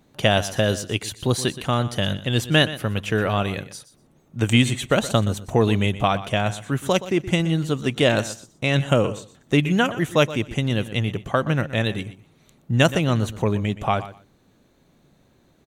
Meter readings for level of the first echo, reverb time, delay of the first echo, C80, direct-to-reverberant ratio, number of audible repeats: −15.0 dB, no reverb audible, 122 ms, no reverb audible, no reverb audible, 2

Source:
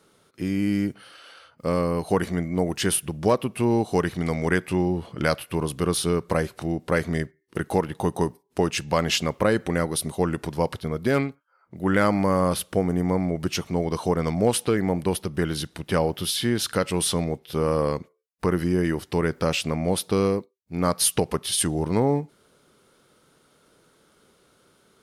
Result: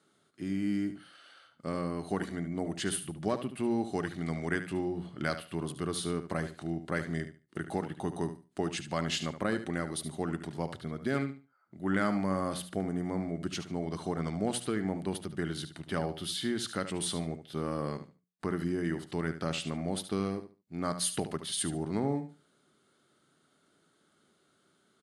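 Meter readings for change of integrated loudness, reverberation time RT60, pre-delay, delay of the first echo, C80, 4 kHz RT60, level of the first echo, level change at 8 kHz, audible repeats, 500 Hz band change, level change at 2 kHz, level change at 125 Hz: −9.5 dB, no reverb audible, no reverb audible, 73 ms, no reverb audible, no reverb audible, −11.0 dB, −10.0 dB, 2, −11.5 dB, −8.5 dB, −10.0 dB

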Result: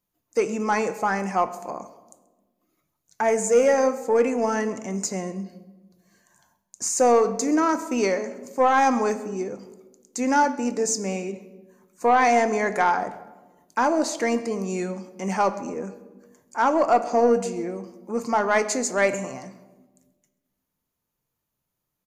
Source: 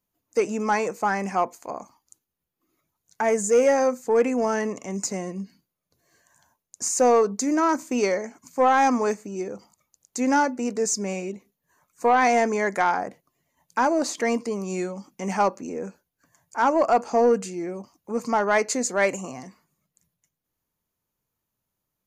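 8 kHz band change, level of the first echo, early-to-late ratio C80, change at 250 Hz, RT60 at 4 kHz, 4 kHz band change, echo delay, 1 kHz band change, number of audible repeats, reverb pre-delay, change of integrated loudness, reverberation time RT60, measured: 0.0 dB, −23.0 dB, 15.0 dB, +0.5 dB, 0.75 s, +0.5 dB, 133 ms, +0.5 dB, 1, 6 ms, +0.5 dB, 1.2 s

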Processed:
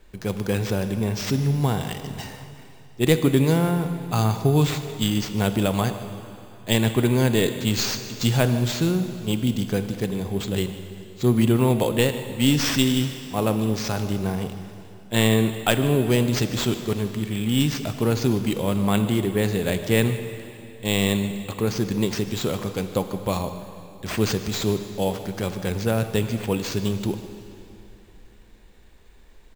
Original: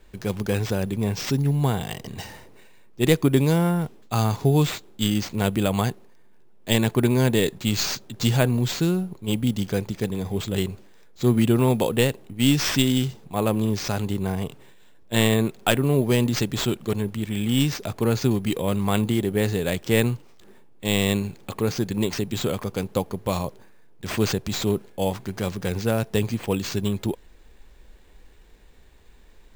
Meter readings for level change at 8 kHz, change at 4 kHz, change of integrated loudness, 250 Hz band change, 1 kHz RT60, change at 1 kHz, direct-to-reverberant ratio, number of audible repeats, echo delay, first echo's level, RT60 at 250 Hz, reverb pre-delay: +0.5 dB, +0.5 dB, +0.5 dB, +0.5 dB, 2.9 s, +0.5 dB, 8.5 dB, 1, 150 ms, −18.0 dB, 3.0 s, 17 ms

